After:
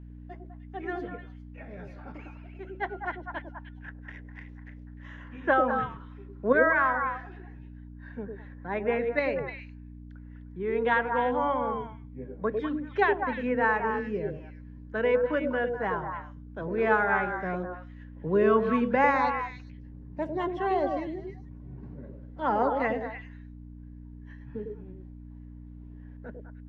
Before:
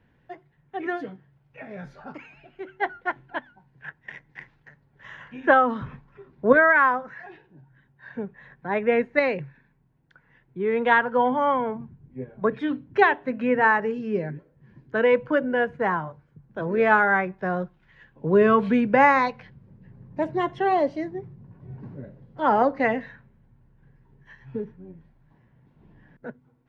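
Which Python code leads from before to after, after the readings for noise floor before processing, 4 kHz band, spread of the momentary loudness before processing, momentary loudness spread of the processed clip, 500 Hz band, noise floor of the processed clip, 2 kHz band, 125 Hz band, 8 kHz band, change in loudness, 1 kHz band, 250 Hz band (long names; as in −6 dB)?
−64 dBFS, −5.5 dB, 22 LU, 23 LU, −4.0 dB, −45 dBFS, −6.0 dB, −2.0 dB, can't be measured, −5.5 dB, −5.0 dB, −5.0 dB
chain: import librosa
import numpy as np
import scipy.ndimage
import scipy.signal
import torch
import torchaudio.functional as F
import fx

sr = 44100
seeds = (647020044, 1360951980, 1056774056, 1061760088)

y = fx.add_hum(x, sr, base_hz=60, snr_db=13)
y = fx.echo_stepped(y, sr, ms=101, hz=400.0, octaves=1.4, feedback_pct=70, wet_db=-0.5)
y = y * 10.0 ** (-6.5 / 20.0)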